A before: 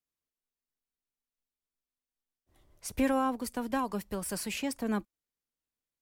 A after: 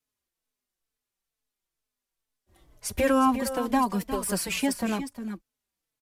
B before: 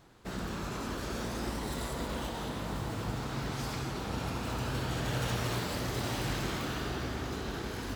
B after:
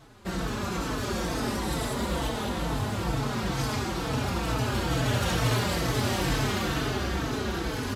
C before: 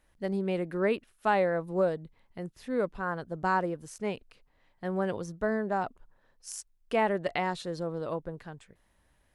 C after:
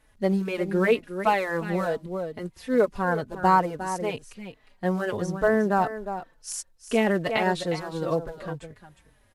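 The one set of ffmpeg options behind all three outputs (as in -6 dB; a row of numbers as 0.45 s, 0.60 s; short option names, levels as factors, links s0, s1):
-filter_complex "[0:a]asplit=2[s0][s1];[s1]acrusher=bits=4:mode=log:mix=0:aa=0.000001,volume=0.266[s2];[s0][s2]amix=inputs=2:normalize=0,aecho=1:1:358:0.282,aresample=32000,aresample=44100,asplit=2[s3][s4];[s4]adelay=4.1,afreqshift=-2.2[s5];[s3][s5]amix=inputs=2:normalize=1,volume=2.37"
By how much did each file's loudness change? +6.0 LU, +7.0 LU, +5.5 LU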